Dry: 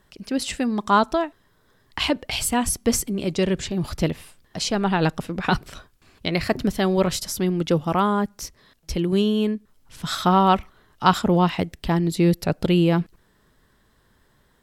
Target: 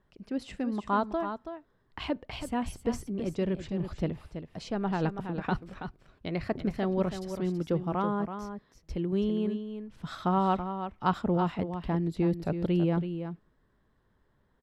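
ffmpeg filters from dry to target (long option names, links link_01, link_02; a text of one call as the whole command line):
ffmpeg -i in.wav -filter_complex "[0:a]lowpass=frequency=1200:poles=1,asplit=2[link_01][link_02];[link_02]aecho=0:1:328:0.355[link_03];[link_01][link_03]amix=inputs=2:normalize=0,volume=-8dB" out.wav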